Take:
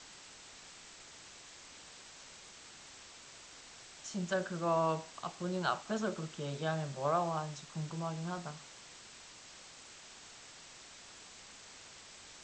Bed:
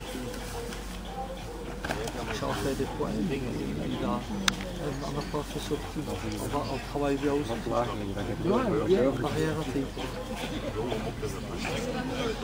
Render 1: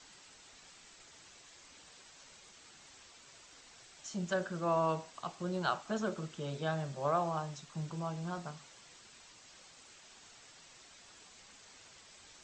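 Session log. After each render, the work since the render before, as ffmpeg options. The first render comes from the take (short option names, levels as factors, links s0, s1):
-af "afftdn=nr=6:nf=-54"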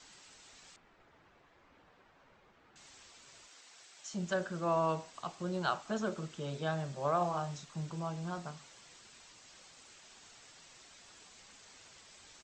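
-filter_complex "[0:a]asettb=1/sr,asplit=3[s0][s1][s2];[s0]atrim=end=0.764[s3];[s1]atrim=start=0.76:end=2.76,asetpts=PTS-STARTPTS,afade=t=in:d=0.004:c=qsin,afade=t=out:st=1.996:d=0.004:c=qsin,lowpass=1500[s4];[s2]atrim=start=2.756[s5];[s3][s4]acrossfade=d=0.004:c1=hsin:c2=qsin[s6];[s6][s5]acrossfade=d=0.004:c1=qsin:c2=hsin,asettb=1/sr,asplit=3[s7][s8][s9];[s7]atrim=end=3.484[s10];[s8]atrim=start=3.48:end=4.13,asetpts=PTS-STARTPTS,afade=t=in:d=0.004:c=qsin,afade=t=out:st=0.646:d=0.004:c=qsin,highpass=f=580:p=1[s11];[s9]atrim=start=4.126[s12];[s10][s11]acrossfade=d=0.004:c1=hsin:c2=qsin[s13];[s13][s12]acrossfade=d=0.004:c1=qsin:c2=hsin,asplit=3[s14][s15][s16];[s14]afade=t=out:st=7.2:d=0.02[s17];[s15]asplit=2[s18][s19];[s19]adelay=34,volume=0.501[s20];[s18][s20]amix=inputs=2:normalize=0,afade=t=in:st=7.2:d=0.02,afade=t=out:st=7.64:d=0.02[s21];[s16]afade=t=in:st=7.64:d=0.02[s22];[s17][s21][s22]amix=inputs=3:normalize=0"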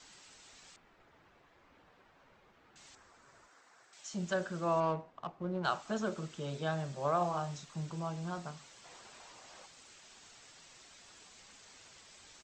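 -filter_complex "[0:a]asettb=1/sr,asplit=3[s0][s1][s2];[s0]atrim=end=2.954[s3];[s1]atrim=start=2.95:end=3.93,asetpts=PTS-STARTPTS,afade=t=in:d=0.004:c=qsin,afade=t=out:st=0.976:d=0.004:c=qsin,highshelf=f=2100:t=q:w=1.5:g=-10.5[s4];[s2]atrim=start=3.926[s5];[s3][s4]acrossfade=d=0.004:c1=hsin:c2=qsin[s6];[s6][s5]acrossfade=d=0.004:c1=qsin:c2=hsin,asettb=1/sr,asplit=3[s7][s8][s9];[s7]atrim=end=4.804[s10];[s8]atrim=start=4.8:end=5.65,asetpts=PTS-STARTPTS,afade=t=in:d=0.004:c=qsin,afade=t=out:st=0.846:d=0.004:c=qsin,adynamicsmooth=sensitivity=4:basefreq=1100[s11];[s9]atrim=start=5.646[s12];[s10][s11]acrossfade=d=0.004:c1=hsin:c2=qsin[s13];[s13][s12]acrossfade=d=0.004:c1=qsin:c2=hsin,asettb=1/sr,asplit=3[s14][s15][s16];[s14]atrim=end=8.844[s17];[s15]atrim=start=8.84:end=9.66,asetpts=PTS-STARTPTS,afade=t=in:d=0.004:c=qsin,afade=t=out:st=0.816:d=0.004:c=qsin,equalizer=f=740:w=0.7:g=10.5[s18];[s16]atrim=start=9.656[s19];[s17][s18]acrossfade=d=0.004:c1=hsin:c2=qsin[s20];[s20][s19]acrossfade=d=0.004:c1=qsin:c2=hsin"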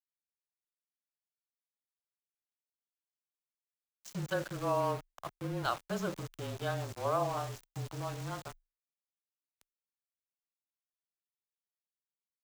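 -af "aeval=exprs='val(0)*gte(abs(val(0)),0.00891)':c=same,afreqshift=-26"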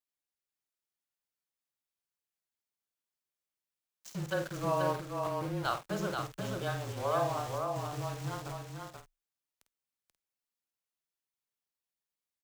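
-filter_complex "[0:a]asplit=2[s0][s1];[s1]adelay=50,volume=0.355[s2];[s0][s2]amix=inputs=2:normalize=0,aecho=1:1:484:0.596"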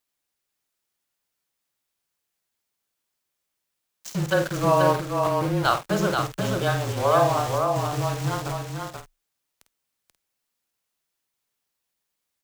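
-af "volume=3.76"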